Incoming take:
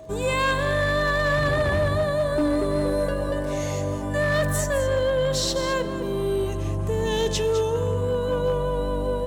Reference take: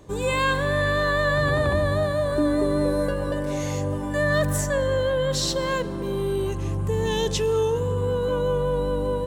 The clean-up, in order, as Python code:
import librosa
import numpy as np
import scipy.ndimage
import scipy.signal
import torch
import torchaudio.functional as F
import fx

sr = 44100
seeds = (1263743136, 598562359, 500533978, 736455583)

y = fx.fix_declip(x, sr, threshold_db=-16.5)
y = fx.fix_declick_ar(y, sr, threshold=6.5)
y = fx.notch(y, sr, hz=640.0, q=30.0)
y = fx.fix_echo_inverse(y, sr, delay_ms=208, level_db=-11.0)